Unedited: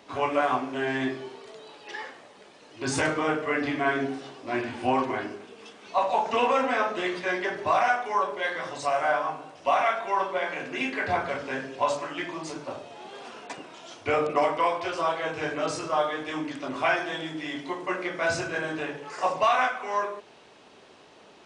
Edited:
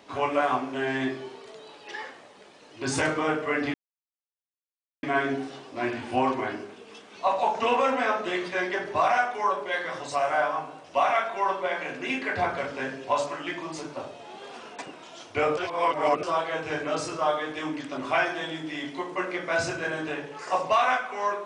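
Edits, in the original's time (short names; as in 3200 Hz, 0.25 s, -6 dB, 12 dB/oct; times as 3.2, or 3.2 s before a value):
3.74 insert silence 1.29 s
14.28–14.94 reverse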